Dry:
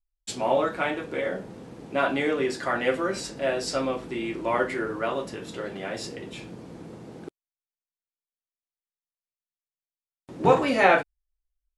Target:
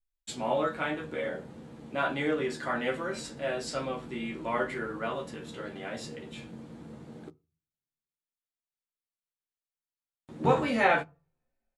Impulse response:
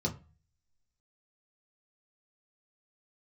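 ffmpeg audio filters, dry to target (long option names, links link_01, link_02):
-filter_complex "[0:a]asplit=2[link_01][link_02];[link_02]adelay=13,volume=-6dB[link_03];[link_01][link_03]amix=inputs=2:normalize=0,asplit=2[link_04][link_05];[1:a]atrim=start_sample=2205,highshelf=frequency=4600:gain=11.5[link_06];[link_05][link_06]afir=irnorm=-1:irlink=0,volume=-19.5dB[link_07];[link_04][link_07]amix=inputs=2:normalize=0,volume=-5.5dB"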